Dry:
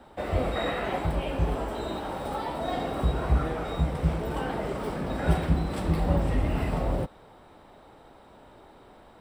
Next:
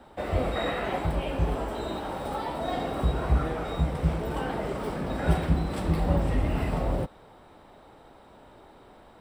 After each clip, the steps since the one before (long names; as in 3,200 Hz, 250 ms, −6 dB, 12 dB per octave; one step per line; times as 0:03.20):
no processing that can be heard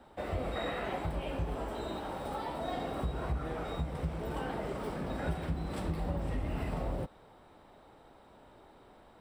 downward compressor 4 to 1, threshold −25 dBFS, peak gain reduction 7.5 dB
level −5.5 dB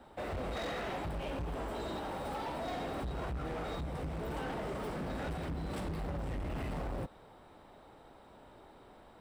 hard clipping −36 dBFS, distortion −8 dB
level +1 dB